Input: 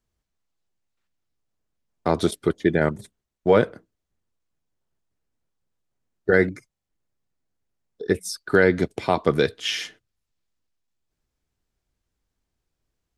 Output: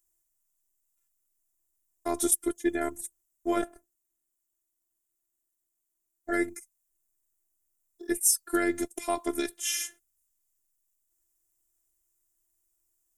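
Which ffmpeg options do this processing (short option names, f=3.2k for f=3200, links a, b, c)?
-filter_complex "[0:a]asettb=1/sr,asplit=3[a][b][c];[a]atrim=end=3.614[d];[b]atrim=start=3.61:end=6.31,asetpts=PTS-STARTPTS,afade=t=in:d=0.004:c=qsin,afade=t=out:st=2.696:d=0.004:c=qsin,aeval=exprs='val(0)*sin(2*PI*160*n/s)':c=same[e];[c]atrim=start=6.306[f];[d][e]acrossfade=d=0.004:c1=hsin:c2=qsin[g];[g][f]acrossfade=d=0.004:c1=qsin:c2=hsin,aexciter=amount=9.9:drive=8:freq=6.5k,afftfilt=real='hypot(re,im)*cos(PI*b)':imag='0':win_size=512:overlap=0.75,volume=-5.5dB"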